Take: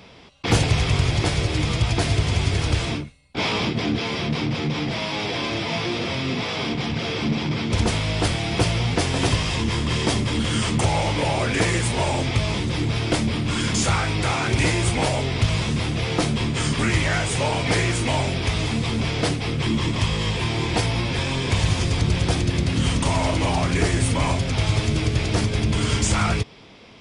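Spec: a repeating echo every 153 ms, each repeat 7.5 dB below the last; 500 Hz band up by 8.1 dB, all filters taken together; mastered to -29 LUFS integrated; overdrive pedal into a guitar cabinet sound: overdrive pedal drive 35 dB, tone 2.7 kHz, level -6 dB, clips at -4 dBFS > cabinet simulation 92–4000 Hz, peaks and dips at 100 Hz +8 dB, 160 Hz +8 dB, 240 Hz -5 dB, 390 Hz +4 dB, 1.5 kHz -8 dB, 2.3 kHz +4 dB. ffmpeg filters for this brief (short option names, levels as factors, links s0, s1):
-filter_complex "[0:a]equalizer=f=500:t=o:g=8.5,aecho=1:1:153|306|459|612|765:0.422|0.177|0.0744|0.0312|0.0131,asplit=2[s0][s1];[s1]highpass=f=720:p=1,volume=56.2,asoftclip=type=tanh:threshold=0.631[s2];[s0][s2]amix=inputs=2:normalize=0,lowpass=f=2700:p=1,volume=0.501,highpass=92,equalizer=f=100:t=q:w=4:g=8,equalizer=f=160:t=q:w=4:g=8,equalizer=f=240:t=q:w=4:g=-5,equalizer=f=390:t=q:w=4:g=4,equalizer=f=1500:t=q:w=4:g=-8,equalizer=f=2300:t=q:w=4:g=4,lowpass=f=4000:w=0.5412,lowpass=f=4000:w=1.3066,volume=0.119"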